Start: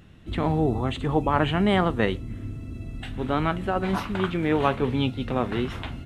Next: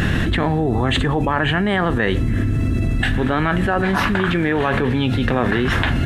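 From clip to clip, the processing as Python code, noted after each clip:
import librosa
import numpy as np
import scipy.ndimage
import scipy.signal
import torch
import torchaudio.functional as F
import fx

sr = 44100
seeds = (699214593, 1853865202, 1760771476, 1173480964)

y = fx.peak_eq(x, sr, hz=1700.0, db=12.5, octaves=0.27)
y = fx.env_flatten(y, sr, amount_pct=100)
y = y * librosa.db_to_amplitude(-1.0)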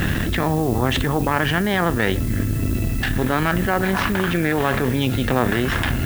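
y = fx.cheby_harmonics(x, sr, harmonics=(4,), levels_db=(-14,), full_scale_db=-1.0)
y = fx.dmg_noise_colour(y, sr, seeds[0], colour='blue', level_db=-35.0)
y = y * librosa.db_to_amplitude(-3.0)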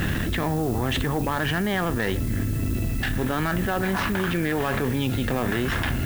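y = 10.0 ** (-11.0 / 20.0) * np.tanh(x / 10.0 ** (-11.0 / 20.0))
y = y * librosa.db_to_amplitude(-3.0)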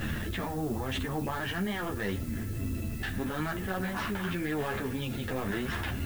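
y = fx.ensemble(x, sr)
y = y * librosa.db_to_amplitude(-5.0)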